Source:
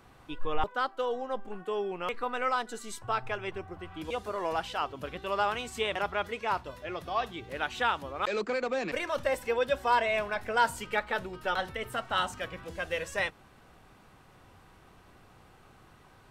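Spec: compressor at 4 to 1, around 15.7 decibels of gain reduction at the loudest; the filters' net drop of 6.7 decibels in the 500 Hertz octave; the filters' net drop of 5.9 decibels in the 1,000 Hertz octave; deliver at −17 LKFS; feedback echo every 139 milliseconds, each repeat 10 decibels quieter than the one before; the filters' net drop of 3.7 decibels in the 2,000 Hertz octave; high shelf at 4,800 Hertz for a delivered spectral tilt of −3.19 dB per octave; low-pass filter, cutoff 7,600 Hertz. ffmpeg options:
ffmpeg -i in.wav -af "lowpass=7600,equalizer=frequency=500:width_type=o:gain=-6.5,equalizer=frequency=1000:width_type=o:gain=-5,equalizer=frequency=2000:width_type=o:gain=-4,highshelf=frequency=4800:gain=8.5,acompressor=threshold=-42dB:ratio=4,aecho=1:1:139|278|417|556:0.316|0.101|0.0324|0.0104,volume=27.5dB" out.wav

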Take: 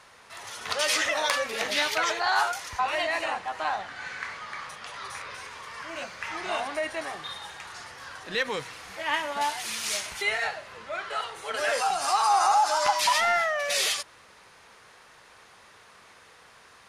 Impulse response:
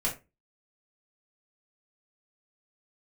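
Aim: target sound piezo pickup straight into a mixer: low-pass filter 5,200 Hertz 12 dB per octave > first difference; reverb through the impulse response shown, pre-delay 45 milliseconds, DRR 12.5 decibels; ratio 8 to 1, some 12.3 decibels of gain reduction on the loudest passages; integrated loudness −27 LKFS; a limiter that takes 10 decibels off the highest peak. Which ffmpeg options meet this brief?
-filter_complex "[0:a]acompressor=threshold=-31dB:ratio=8,alimiter=level_in=3dB:limit=-24dB:level=0:latency=1,volume=-3dB,asplit=2[link_01][link_02];[1:a]atrim=start_sample=2205,adelay=45[link_03];[link_02][link_03]afir=irnorm=-1:irlink=0,volume=-19dB[link_04];[link_01][link_04]amix=inputs=2:normalize=0,lowpass=5200,aderivative,volume=20dB"

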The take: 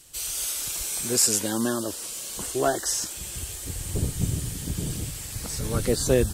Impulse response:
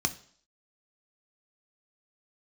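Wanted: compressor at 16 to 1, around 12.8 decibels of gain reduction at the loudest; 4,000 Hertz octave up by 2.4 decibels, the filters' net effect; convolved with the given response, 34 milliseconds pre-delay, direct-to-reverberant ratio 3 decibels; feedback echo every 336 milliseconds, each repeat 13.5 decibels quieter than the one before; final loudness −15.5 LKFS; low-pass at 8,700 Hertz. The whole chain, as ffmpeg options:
-filter_complex "[0:a]lowpass=8700,equalizer=frequency=4000:width_type=o:gain=3.5,acompressor=threshold=-28dB:ratio=16,aecho=1:1:336|672:0.211|0.0444,asplit=2[link_01][link_02];[1:a]atrim=start_sample=2205,adelay=34[link_03];[link_02][link_03]afir=irnorm=-1:irlink=0,volume=-9.5dB[link_04];[link_01][link_04]amix=inputs=2:normalize=0,volume=14dB"

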